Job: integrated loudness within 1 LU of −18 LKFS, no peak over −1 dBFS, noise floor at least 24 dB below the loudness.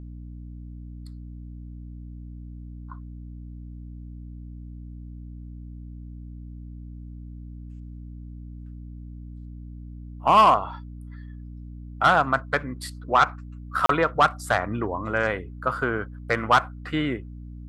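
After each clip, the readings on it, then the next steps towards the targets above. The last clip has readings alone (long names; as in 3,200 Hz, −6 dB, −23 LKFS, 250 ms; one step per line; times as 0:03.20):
number of dropouts 1; longest dropout 33 ms; mains hum 60 Hz; hum harmonics up to 300 Hz; level of the hum −36 dBFS; integrated loudness −23.0 LKFS; sample peak −7.5 dBFS; target loudness −18.0 LKFS
→ repair the gap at 0:13.86, 33 ms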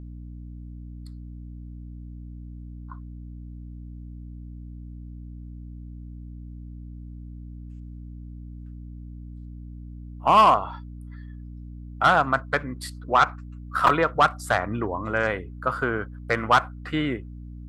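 number of dropouts 0; mains hum 60 Hz; hum harmonics up to 300 Hz; level of the hum −36 dBFS
→ mains-hum notches 60/120/180/240/300 Hz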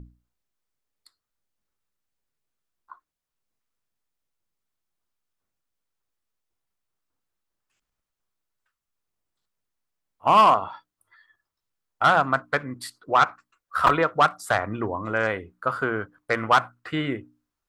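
mains hum none found; integrated loudness −23.0 LKFS; sample peak −5.0 dBFS; target loudness −18.0 LKFS
→ level +5 dB
brickwall limiter −1 dBFS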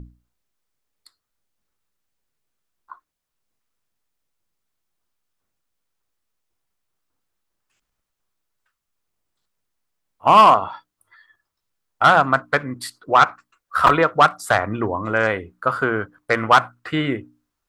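integrated loudness −18.0 LKFS; sample peak −1.0 dBFS; background noise floor −81 dBFS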